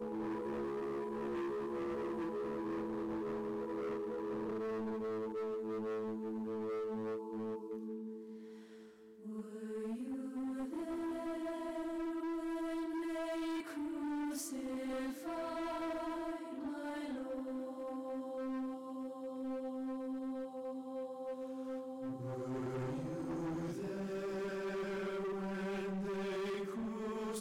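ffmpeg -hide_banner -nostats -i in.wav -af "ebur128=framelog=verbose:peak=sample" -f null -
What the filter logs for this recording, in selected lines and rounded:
Integrated loudness:
  I:         -41.0 LUFS
  Threshold: -51.1 LUFS
Loudness range:
  LRA:         3.3 LU
  Threshold: -61.2 LUFS
  LRA low:   -43.2 LUFS
  LRA high:  -39.9 LUFS
Sample peak:
  Peak:      -37.1 dBFS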